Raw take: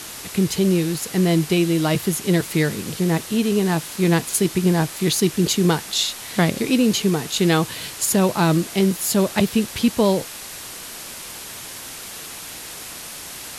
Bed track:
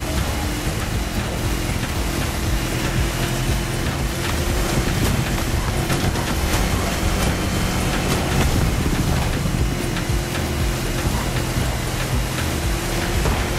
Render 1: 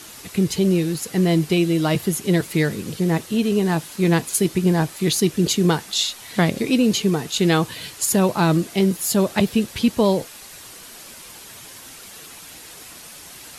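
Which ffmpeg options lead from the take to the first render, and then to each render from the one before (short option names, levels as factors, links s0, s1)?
-af "afftdn=nr=7:nf=-35"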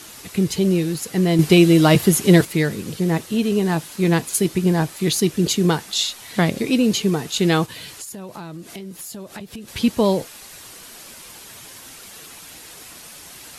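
-filter_complex "[0:a]asplit=3[s0][s1][s2];[s0]afade=t=out:st=7.65:d=0.02[s3];[s1]acompressor=threshold=0.0282:ratio=12:attack=3.2:release=140:knee=1:detection=peak,afade=t=in:st=7.65:d=0.02,afade=t=out:st=9.67:d=0.02[s4];[s2]afade=t=in:st=9.67:d=0.02[s5];[s3][s4][s5]amix=inputs=3:normalize=0,asplit=3[s6][s7][s8];[s6]atrim=end=1.392[s9];[s7]atrim=start=1.388:end=2.452,asetpts=PTS-STARTPTS,volume=2.11[s10];[s8]atrim=start=2.448[s11];[s9][s10]acrossfade=d=0.004:c1=hsin:c2=hsin[s12];[s12][s11]acrossfade=d=0.004:c1=hsin:c2=hsin"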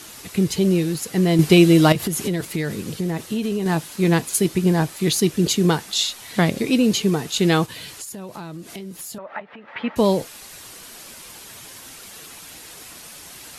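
-filter_complex "[0:a]asettb=1/sr,asplit=3[s0][s1][s2];[s0]atrim=end=1.924[s3];[s1]atrim=start=1.92:end=3.66,asetpts=PTS-STARTPTS,afade=t=in:d=0.004:c=qsin,afade=t=out:st=1.736:d=0.004:c=qsin,acompressor=threshold=0.112:ratio=12:attack=3.2:release=140:knee=1:detection=peak[s4];[s2]atrim=start=3.656[s5];[s3][s4]acrossfade=d=0.004:c1=hsin:c2=qsin[s6];[s6][s5]acrossfade=d=0.004:c1=qsin:c2=hsin,asettb=1/sr,asplit=3[s7][s8][s9];[s7]atrim=end=9.184[s10];[s8]atrim=start=9.18:end=9.96,asetpts=PTS-STARTPTS,afade=t=in:d=0.004:c=qsin,afade=t=out:st=0.776:d=0.004:c=qsin,highpass=360,equalizer=f=370:t=q:w=4:g=-7,equalizer=f=610:t=q:w=4:g=7,equalizer=f=880:t=q:w=4:g=9,equalizer=f=1300:t=q:w=4:g=9,equalizer=f=1900:t=q:w=4:g=8,lowpass=f=2500:w=0.5412,lowpass=f=2500:w=1.3066[s11];[s9]atrim=start=9.956[s12];[s10][s11]acrossfade=d=0.004:c1=hsin:c2=qsin[s13];[s13][s12]acrossfade=d=0.004:c1=qsin:c2=hsin"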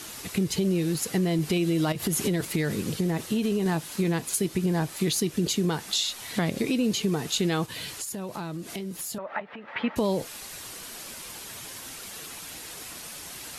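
-af "alimiter=limit=0.211:level=0:latency=1:release=212,acompressor=threshold=0.0708:ratio=2.5"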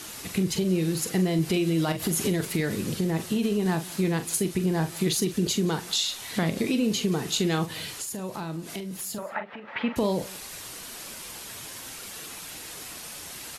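-filter_complex "[0:a]asplit=2[s0][s1];[s1]adelay=43,volume=0.316[s2];[s0][s2]amix=inputs=2:normalize=0,aecho=1:1:177:0.0841"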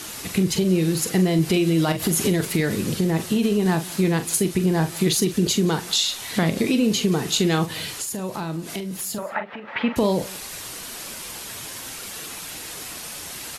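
-af "volume=1.78"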